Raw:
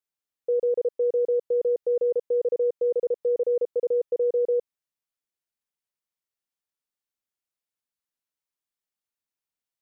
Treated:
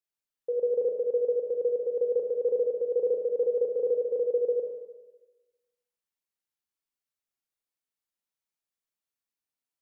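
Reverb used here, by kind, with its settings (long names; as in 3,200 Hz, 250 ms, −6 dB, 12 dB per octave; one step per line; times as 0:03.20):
four-comb reverb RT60 1.2 s, combs from 28 ms, DRR 1 dB
level −4.5 dB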